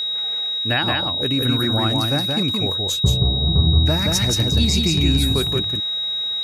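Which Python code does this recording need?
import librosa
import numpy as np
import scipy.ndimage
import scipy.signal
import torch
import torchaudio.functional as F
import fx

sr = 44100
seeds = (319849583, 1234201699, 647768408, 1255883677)

y = fx.notch(x, sr, hz=3800.0, q=30.0)
y = fx.fix_echo_inverse(y, sr, delay_ms=175, level_db=-3.0)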